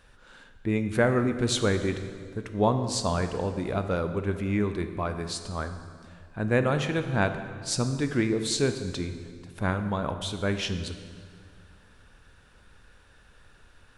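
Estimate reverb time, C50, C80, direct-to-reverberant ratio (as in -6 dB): 2.1 s, 9.0 dB, 10.5 dB, 8.0 dB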